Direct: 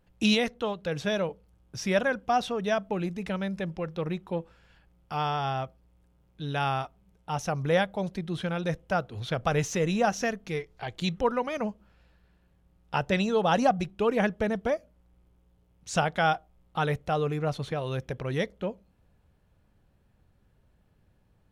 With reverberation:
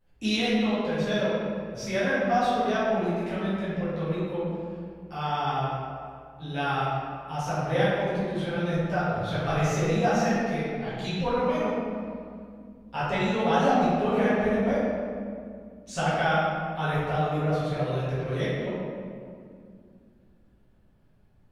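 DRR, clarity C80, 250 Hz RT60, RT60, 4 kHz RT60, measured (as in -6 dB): -12.0 dB, -1.0 dB, 3.2 s, 2.2 s, 1.3 s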